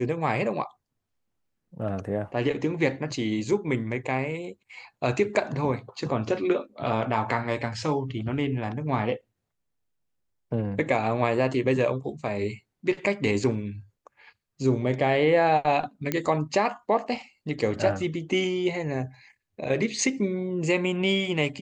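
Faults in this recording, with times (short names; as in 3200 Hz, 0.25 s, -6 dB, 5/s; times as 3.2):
16.12 pop -11 dBFS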